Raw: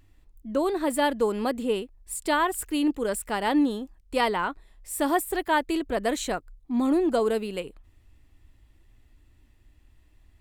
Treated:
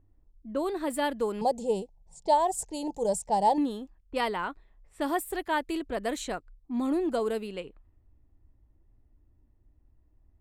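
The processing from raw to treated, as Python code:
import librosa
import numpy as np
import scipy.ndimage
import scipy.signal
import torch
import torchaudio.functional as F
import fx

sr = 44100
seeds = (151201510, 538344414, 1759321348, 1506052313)

y = fx.env_lowpass(x, sr, base_hz=720.0, full_db=-24.0)
y = fx.curve_eq(y, sr, hz=(110.0, 170.0, 270.0, 470.0, 870.0, 1300.0, 1800.0, 2800.0, 6300.0, 13000.0), db=(0, 13, -8, 5, 12, -22, -13, -10, 13, -7), at=(1.41, 3.58))
y = F.gain(torch.from_numpy(y), -5.0).numpy()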